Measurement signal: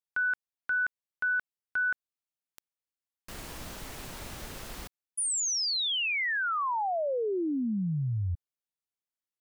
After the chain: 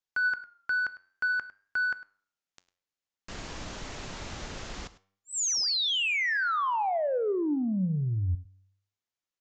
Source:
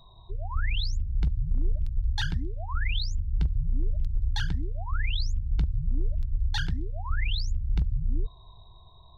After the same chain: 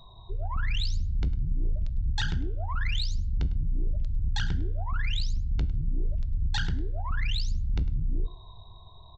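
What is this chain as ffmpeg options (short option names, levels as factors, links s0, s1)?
-af "aresample=16000,asoftclip=type=tanh:threshold=0.0596,aresample=44100,flanger=delay=9.6:depth=1.7:regen=88:speed=0.55:shape=triangular,aecho=1:1:103:0.126,volume=2.37"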